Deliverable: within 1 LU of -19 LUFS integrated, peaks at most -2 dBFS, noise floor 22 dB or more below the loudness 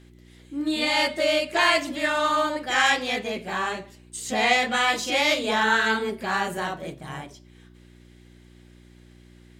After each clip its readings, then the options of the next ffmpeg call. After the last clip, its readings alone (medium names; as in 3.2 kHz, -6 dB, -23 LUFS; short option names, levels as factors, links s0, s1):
hum 60 Hz; highest harmonic 360 Hz; hum level -50 dBFS; loudness -23.0 LUFS; peak level -7.0 dBFS; loudness target -19.0 LUFS
-> -af "bandreject=f=60:t=h:w=4,bandreject=f=120:t=h:w=4,bandreject=f=180:t=h:w=4,bandreject=f=240:t=h:w=4,bandreject=f=300:t=h:w=4,bandreject=f=360:t=h:w=4"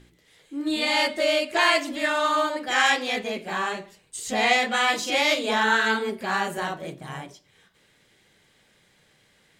hum not found; loudness -23.0 LUFS; peak level -7.0 dBFS; loudness target -19.0 LUFS
-> -af "volume=1.58"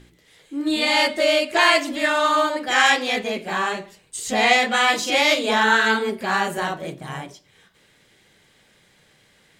loudness -19.0 LUFS; peak level -3.5 dBFS; noise floor -58 dBFS